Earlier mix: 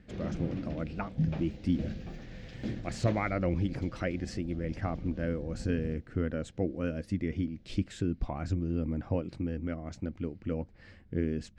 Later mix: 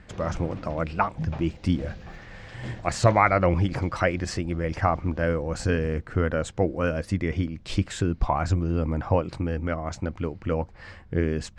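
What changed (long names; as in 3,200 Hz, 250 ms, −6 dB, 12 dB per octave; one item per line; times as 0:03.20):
speech +9.0 dB
master: add graphic EQ with 10 bands 250 Hz −7 dB, 1,000 Hz +10 dB, 8,000 Hz +4 dB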